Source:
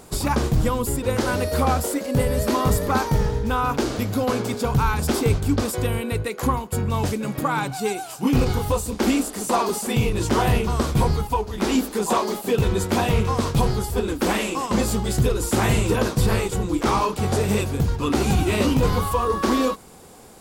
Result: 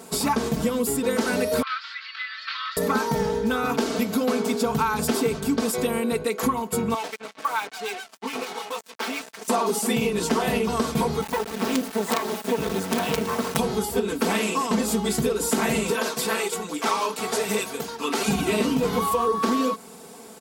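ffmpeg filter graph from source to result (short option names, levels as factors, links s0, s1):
-filter_complex "[0:a]asettb=1/sr,asplit=3[s0][s1][s2];[s0]atrim=end=1.624[s3];[s1]atrim=start=1.62:end=2.77,asetpts=PTS-STARTPTS,afade=t=in:d=0.004:c=qsin,afade=t=out:st=1.146:d=0.004:c=qsin,asuperpass=centerf=2400:order=12:qfactor=0.72,acompressor=mode=upward:threshold=0.02:ratio=2.5:attack=3.2:release=140:knee=2.83:detection=peak[s4];[s2]atrim=start=2.766[s5];[s3][s4]acrossfade=d=0.004:c1=hsin:c2=qsin[s6];[s6][s5]acrossfade=d=0.004:c1=qsin:c2=hsin,asettb=1/sr,asplit=3[s7][s8][s9];[s7]atrim=end=6.944[s10];[s8]atrim=start=6.94:end=9.48,asetpts=PTS-STARTPTS,afade=t=in:d=0.004:c=qsin,afade=t=out:st=2.536:d=0.004:c=qsin,acrossover=split=930[s11][s12];[s11]aeval=exprs='val(0)*(1-0.7/2+0.7/2*cos(2*PI*6.9*n/s))':c=same[s13];[s12]aeval=exprs='val(0)*(1-0.7/2-0.7/2*cos(2*PI*6.9*n/s))':c=same[s14];[s13][s14]amix=inputs=2:normalize=0,highpass=650,lowpass=4400,acrusher=bits=5:mix=0:aa=0.5[s15];[s9]atrim=start=9.476[s16];[s10][s15]acrossfade=d=0.004:c1=hsin:c2=qsin[s17];[s17][s16]acrossfade=d=0.004:c1=qsin:c2=hsin,asettb=1/sr,asplit=3[s18][s19][s20];[s18]atrim=end=11.214[s21];[s19]atrim=start=11.21:end=13.57,asetpts=PTS-STARTPTS,afade=t=in:d=0.004:c=qsin,afade=t=out:st=2.356:d=0.004:c=qsin,lowpass=f=3800:p=1,acrusher=bits=3:dc=4:mix=0:aa=0.000001[s22];[s20]atrim=start=13.566[s23];[s21][s22]acrossfade=d=0.004:c1=hsin:c2=qsin[s24];[s24][s23]acrossfade=d=0.004:c1=qsin:c2=hsin,asettb=1/sr,asplit=3[s25][s26][s27];[s25]atrim=end=15.904[s28];[s26]atrim=start=15.9:end=18.28,asetpts=PTS-STARTPTS,afade=t=in:d=0.004:c=qsin,afade=t=out:st=2.376:d=0.004:c=qsin,highpass=f=760:p=1,aphaser=in_gain=1:out_gain=1:delay=4:decay=0.25:speed=1.2:type=triangular[s29];[s27]atrim=start=18.276[s30];[s28][s29]acrossfade=d=0.004:c1=hsin:c2=qsin[s31];[s31][s30]acrossfade=d=0.004:c1=qsin:c2=hsin,highpass=160,aecho=1:1:4.5:0.98,acompressor=threshold=0.112:ratio=6"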